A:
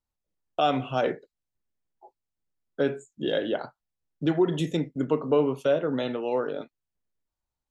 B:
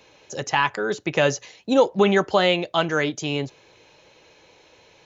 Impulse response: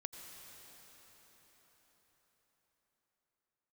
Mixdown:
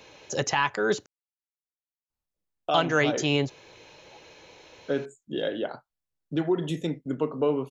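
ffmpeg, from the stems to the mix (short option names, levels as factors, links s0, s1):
-filter_complex "[0:a]adelay=2100,volume=0.75[s0];[1:a]volume=1.33,asplit=3[s1][s2][s3];[s1]atrim=end=1.06,asetpts=PTS-STARTPTS,afade=t=out:st=1.056:d=0.004:c=hsin[s4];[s2]atrim=start=1.06:end=2.69,asetpts=PTS-STARTPTS,volume=0[s5];[s3]atrim=start=2.69,asetpts=PTS-STARTPTS,afade=t=in:d=0.004:c=hsin[s6];[s4][s5][s6]concat=n=3:v=0:a=1[s7];[s0][s7]amix=inputs=2:normalize=0,alimiter=limit=0.282:level=0:latency=1:release=379"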